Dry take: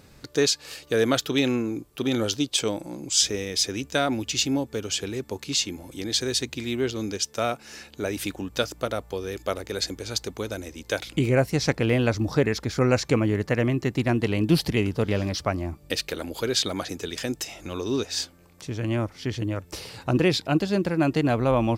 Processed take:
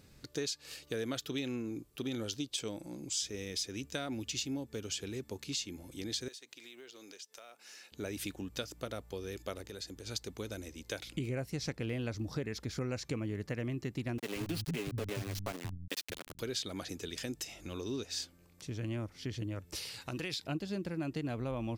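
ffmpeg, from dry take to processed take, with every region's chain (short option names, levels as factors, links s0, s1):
-filter_complex "[0:a]asettb=1/sr,asplit=3[s0][s1][s2];[s0]atrim=end=6.284[s3];[s1]atrim=start=6.28:end=7.92,asetpts=PTS-STARTPTS,afade=t=in:d=0.004:c=qsin,afade=t=out:st=1.636:d=0.004:c=qsin,highpass=560,acrusher=bits=8:mode=log:mix=0:aa=0.000001,acompressor=threshold=0.01:ratio=5:attack=3.2:release=140:knee=1:detection=peak[s4];[s2]atrim=start=7.916[s5];[s3][s4]acrossfade=d=0.004:c1=hsin:c2=qsin[s6];[s6][s5]acrossfade=d=0.004:c1=qsin:c2=hsin,asettb=1/sr,asplit=3[s7][s8][s9];[s7]atrim=end=9.624[s10];[s8]atrim=start=9.62:end=10.07,asetpts=PTS-STARTPTS,afade=t=in:d=0.004:c=qsin,afade=t=out:st=0.446:d=0.004:c=qsin,bandreject=f=2200:w=11,acompressor=threshold=0.0141:ratio=2:attack=3.2:release=140:knee=1:detection=peak[s11];[s9]atrim=start=10.066[s12];[s10][s11]acrossfade=d=0.004:c1=hsin:c2=qsin[s13];[s13][s12]acrossfade=d=0.004:c1=qsin:c2=hsin,asettb=1/sr,asplit=3[s14][s15][s16];[s14]atrim=end=14.184[s17];[s15]atrim=start=14.18:end=16.4,asetpts=PTS-STARTPTS,afade=t=in:d=0.004:c=qsin,afade=t=out:st=2.216:d=0.004:c=qsin,aecho=1:1:7.3:0.43,atrim=end_sample=97902,aeval=exprs='val(0)*gte(abs(val(0)),0.0562)':c=same,acrossover=split=180[s18][s19];[s18]adelay=180[s20];[s20][s19]amix=inputs=2:normalize=0,atrim=end_sample=97902[s21];[s16]atrim=start=16.396[s22];[s17][s21]acrossfade=d=0.004:c1=hsin:c2=qsin[s23];[s23][s22]acrossfade=d=0.004:c1=qsin:c2=hsin,asettb=1/sr,asplit=3[s24][s25][s26];[s24]atrim=end=19.754[s27];[s25]atrim=start=19.75:end=20.44,asetpts=PTS-STARTPTS,afade=t=in:d=0.004:c=qsin,afade=t=out:st=0.686:d=0.004:c=qsin,tiltshelf=f=860:g=-6.5,acompressor=threshold=0.0562:ratio=3:attack=3.2:release=140:knee=1:detection=peak[s28];[s26]atrim=start=20.436[s29];[s27][s28]acrossfade=d=0.004:c1=hsin:c2=qsin[s30];[s30][s29]acrossfade=d=0.004:c1=qsin:c2=hsin,equalizer=f=880:t=o:w=2:g=-5.5,acompressor=threshold=0.0398:ratio=3,volume=0.447"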